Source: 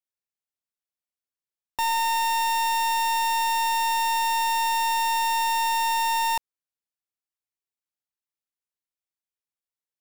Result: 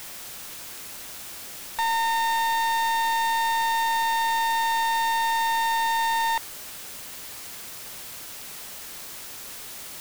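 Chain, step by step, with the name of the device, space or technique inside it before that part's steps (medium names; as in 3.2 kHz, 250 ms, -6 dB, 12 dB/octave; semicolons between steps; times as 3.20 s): drive-through speaker (band-pass 500–3300 Hz; peaking EQ 2 kHz +8 dB 0.49 oct; hard clipper -30 dBFS, distortion -7 dB; white noise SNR 12 dB); trim +8.5 dB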